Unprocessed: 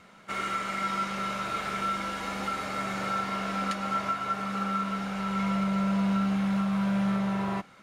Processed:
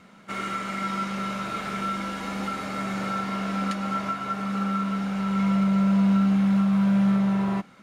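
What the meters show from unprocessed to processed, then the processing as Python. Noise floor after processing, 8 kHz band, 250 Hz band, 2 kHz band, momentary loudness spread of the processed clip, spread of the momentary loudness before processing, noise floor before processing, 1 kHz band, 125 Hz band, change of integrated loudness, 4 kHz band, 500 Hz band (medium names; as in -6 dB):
-51 dBFS, 0.0 dB, +6.5 dB, 0.0 dB, 10 LU, 5 LU, -54 dBFS, 0.0 dB, +6.5 dB, +4.5 dB, 0.0 dB, +1.5 dB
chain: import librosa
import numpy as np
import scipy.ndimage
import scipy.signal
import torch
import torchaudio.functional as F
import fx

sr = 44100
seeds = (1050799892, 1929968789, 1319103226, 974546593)

y = fx.peak_eq(x, sr, hz=220.0, db=7.0, octaves=1.2)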